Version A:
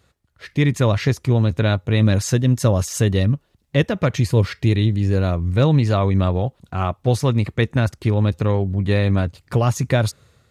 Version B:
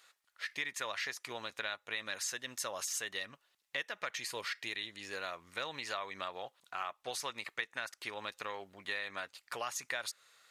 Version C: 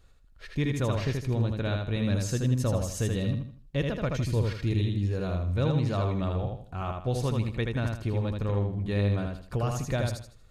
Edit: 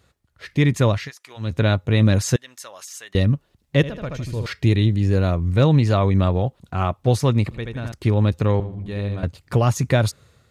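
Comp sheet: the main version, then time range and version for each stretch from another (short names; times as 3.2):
A
0.99–1.48 from B, crossfade 0.24 s
2.36–3.15 from B
3.83–4.46 from C
7.51–7.92 from C
8.6–9.23 from C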